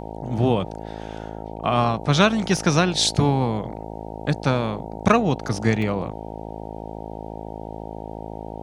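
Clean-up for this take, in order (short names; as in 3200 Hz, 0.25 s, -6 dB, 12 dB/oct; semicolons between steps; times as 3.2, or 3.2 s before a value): clip repair -3.5 dBFS; de-hum 54.1 Hz, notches 17; interpolate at 2.57/5.82, 3 ms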